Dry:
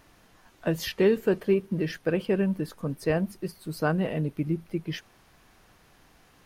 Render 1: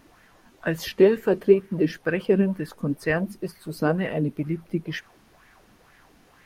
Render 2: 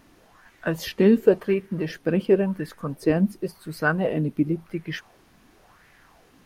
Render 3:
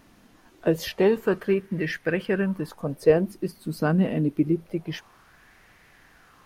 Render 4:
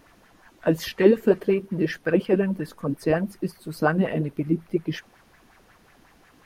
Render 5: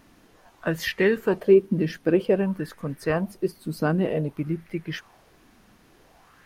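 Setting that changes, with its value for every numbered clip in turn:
LFO bell, rate: 2.1, 0.93, 0.26, 5.5, 0.53 Hz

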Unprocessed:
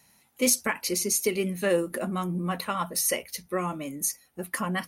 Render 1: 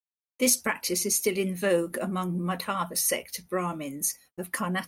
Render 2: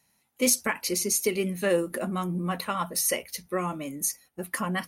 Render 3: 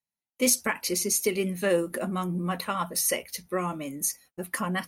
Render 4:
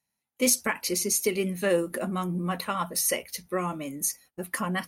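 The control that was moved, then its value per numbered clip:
gate, range: -60, -8, -34, -22 dB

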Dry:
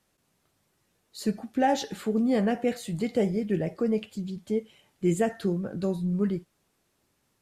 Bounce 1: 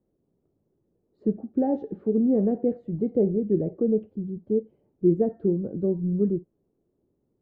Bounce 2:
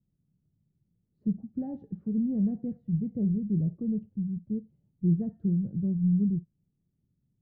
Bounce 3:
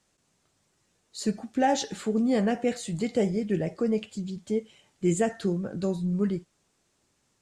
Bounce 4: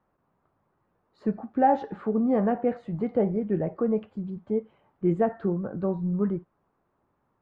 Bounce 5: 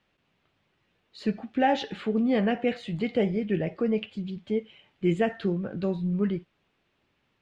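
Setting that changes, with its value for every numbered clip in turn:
synth low-pass, frequency: 400, 160, 7600, 1100, 2900 Hz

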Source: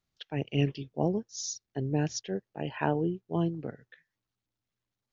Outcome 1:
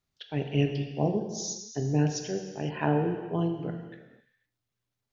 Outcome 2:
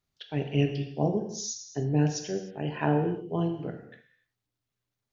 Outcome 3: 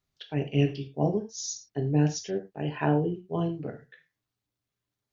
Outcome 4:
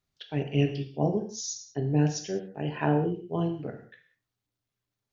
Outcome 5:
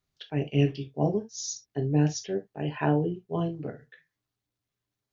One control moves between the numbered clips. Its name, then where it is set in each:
non-linear reverb, gate: 530, 330, 130, 220, 90 ms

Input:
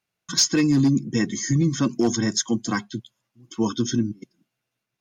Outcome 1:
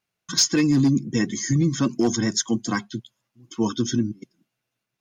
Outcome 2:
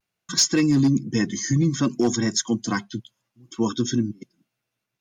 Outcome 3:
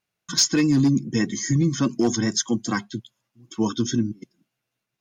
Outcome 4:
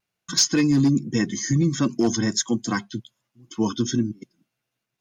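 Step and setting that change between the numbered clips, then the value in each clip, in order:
vibrato, rate: 9.8, 0.6, 4.9, 1.3 Hz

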